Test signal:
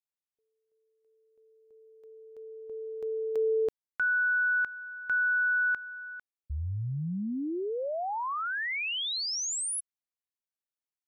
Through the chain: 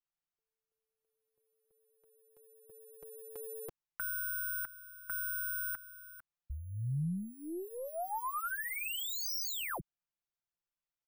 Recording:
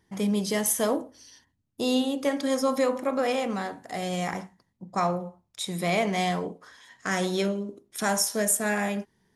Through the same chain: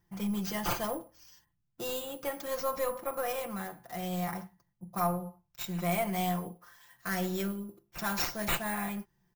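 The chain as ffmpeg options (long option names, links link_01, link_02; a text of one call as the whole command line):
ffmpeg -i in.wav -af "acrusher=samples=4:mix=1:aa=0.000001,aecho=1:1:5.8:0.73,aeval=exprs='0.355*(cos(1*acos(clip(val(0)/0.355,-1,1)))-cos(1*PI/2))+0.00794*(cos(4*acos(clip(val(0)/0.355,-1,1)))-cos(4*PI/2))':channel_layout=same,equalizer=frequency=250:width_type=o:width=1:gain=-12,equalizer=frequency=500:width_type=o:width=1:gain=-9,equalizer=frequency=1000:width_type=o:width=1:gain=-3,equalizer=frequency=2000:width_type=o:width=1:gain=-7,equalizer=frequency=4000:width_type=o:width=1:gain=-9,equalizer=frequency=8000:width_type=o:width=1:gain=-7" out.wav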